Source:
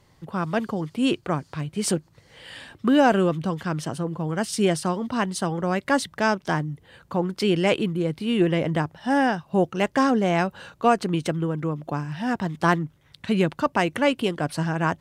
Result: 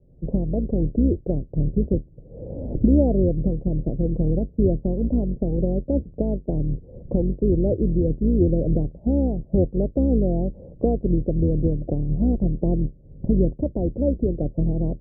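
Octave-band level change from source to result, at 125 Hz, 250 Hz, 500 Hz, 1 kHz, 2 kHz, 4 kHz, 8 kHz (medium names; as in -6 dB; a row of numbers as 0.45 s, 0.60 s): +5.5 dB, +2.0 dB, 0.0 dB, -17.5 dB, under -40 dB, under -40 dB, under -40 dB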